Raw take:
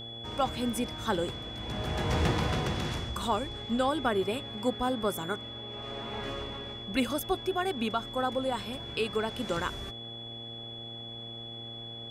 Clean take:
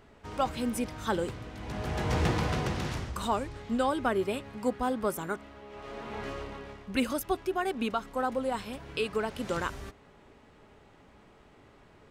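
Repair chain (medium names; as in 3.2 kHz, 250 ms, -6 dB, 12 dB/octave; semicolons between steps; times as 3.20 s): de-hum 115.1 Hz, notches 7; band-stop 3.4 kHz, Q 30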